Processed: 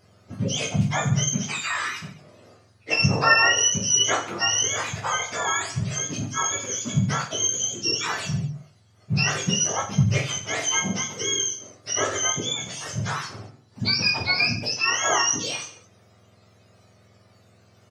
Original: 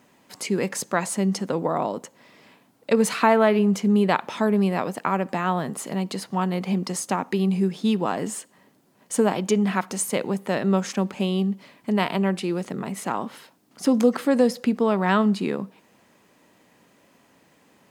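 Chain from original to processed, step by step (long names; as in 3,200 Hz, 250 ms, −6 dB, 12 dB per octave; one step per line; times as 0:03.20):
frequency axis turned over on the octave scale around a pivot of 1,100 Hz
mains-hum notches 50/100/150/200/250/300 Hz
on a send: reverse bouncing-ball delay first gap 20 ms, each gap 1.4×, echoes 5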